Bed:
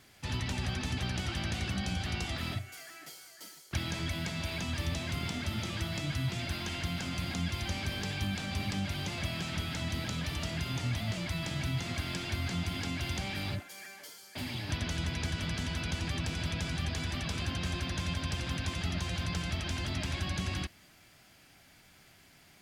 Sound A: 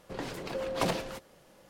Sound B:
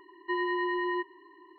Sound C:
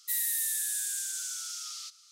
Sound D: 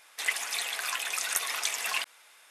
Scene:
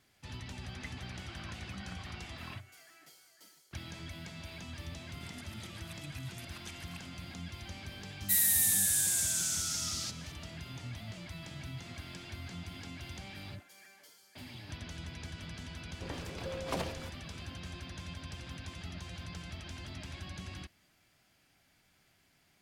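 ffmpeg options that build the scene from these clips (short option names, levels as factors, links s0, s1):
-filter_complex "[4:a]asplit=2[s0][s1];[0:a]volume=0.316[s2];[s0]lowpass=1900[s3];[s1]aeval=exprs='val(0)*pow(10,-20*if(lt(mod(-7.7*n/s,1),2*abs(-7.7)/1000),1-mod(-7.7*n/s,1)/(2*abs(-7.7)/1000),(mod(-7.7*n/s,1)-2*abs(-7.7)/1000)/(1-2*abs(-7.7)/1000))/20)':c=same[s4];[3:a]acontrast=76[s5];[s3]atrim=end=2.5,asetpts=PTS-STARTPTS,volume=0.178,afade=t=in:d=0.004:c=hsin,afade=t=out:st=2.496:d=0.004:c=hsin,adelay=560[s6];[s4]atrim=end=2.5,asetpts=PTS-STARTPTS,volume=0.168,afade=t=in:d=0.004:c=hsin,afade=t=out:st=2.496:d=0.004:c=hsin,adelay=5020[s7];[s5]atrim=end=2.11,asetpts=PTS-STARTPTS,volume=0.668,afade=t=in:d=0.004:c=hsin,afade=t=out:st=2.106:d=0.004:c=hsin,adelay=8210[s8];[1:a]atrim=end=1.69,asetpts=PTS-STARTPTS,volume=0.473,afade=t=in:d=0.004:c=hsin,afade=t=out:st=1.686:d=0.004:c=hsin,adelay=15910[s9];[s2][s6][s7][s8][s9]amix=inputs=5:normalize=0"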